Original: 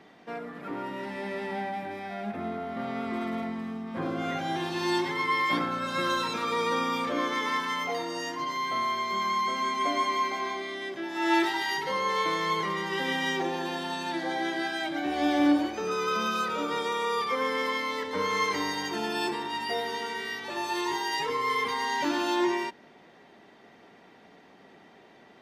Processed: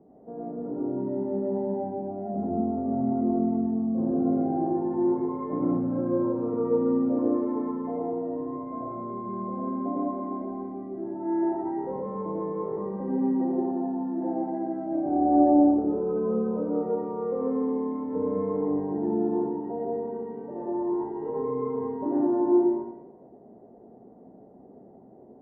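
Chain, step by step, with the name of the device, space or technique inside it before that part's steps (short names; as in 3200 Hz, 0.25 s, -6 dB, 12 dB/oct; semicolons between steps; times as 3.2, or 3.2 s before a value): next room (LPF 630 Hz 24 dB/oct; reverb RT60 1.0 s, pre-delay 79 ms, DRR -5.5 dB)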